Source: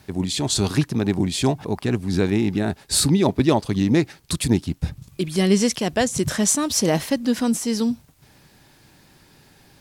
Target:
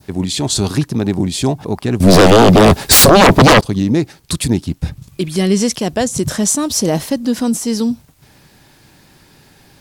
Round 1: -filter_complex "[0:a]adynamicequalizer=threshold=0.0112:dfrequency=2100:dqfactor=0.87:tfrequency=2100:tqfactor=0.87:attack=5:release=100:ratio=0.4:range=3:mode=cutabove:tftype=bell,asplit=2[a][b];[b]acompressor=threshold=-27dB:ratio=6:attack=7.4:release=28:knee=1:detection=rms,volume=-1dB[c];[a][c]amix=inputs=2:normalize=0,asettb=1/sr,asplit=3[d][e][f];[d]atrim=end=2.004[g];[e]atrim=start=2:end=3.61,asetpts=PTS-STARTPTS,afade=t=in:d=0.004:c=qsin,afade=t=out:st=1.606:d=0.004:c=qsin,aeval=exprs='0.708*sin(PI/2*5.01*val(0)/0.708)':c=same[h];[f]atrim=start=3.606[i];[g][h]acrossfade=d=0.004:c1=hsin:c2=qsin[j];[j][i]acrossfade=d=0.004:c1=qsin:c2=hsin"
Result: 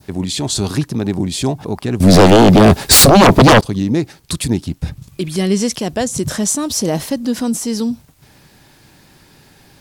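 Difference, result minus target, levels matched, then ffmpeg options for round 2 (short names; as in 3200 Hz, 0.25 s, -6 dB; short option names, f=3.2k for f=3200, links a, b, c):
compressor: peak gain reduction +6.5 dB
-filter_complex "[0:a]adynamicequalizer=threshold=0.0112:dfrequency=2100:dqfactor=0.87:tfrequency=2100:tqfactor=0.87:attack=5:release=100:ratio=0.4:range=3:mode=cutabove:tftype=bell,asplit=2[a][b];[b]acompressor=threshold=-19dB:ratio=6:attack=7.4:release=28:knee=1:detection=rms,volume=-1dB[c];[a][c]amix=inputs=2:normalize=0,asettb=1/sr,asplit=3[d][e][f];[d]atrim=end=2.004[g];[e]atrim=start=2:end=3.61,asetpts=PTS-STARTPTS,afade=t=in:d=0.004:c=qsin,afade=t=out:st=1.606:d=0.004:c=qsin,aeval=exprs='0.708*sin(PI/2*5.01*val(0)/0.708)':c=same[h];[f]atrim=start=3.606[i];[g][h]acrossfade=d=0.004:c1=hsin:c2=qsin[j];[j][i]acrossfade=d=0.004:c1=qsin:c2=hsin"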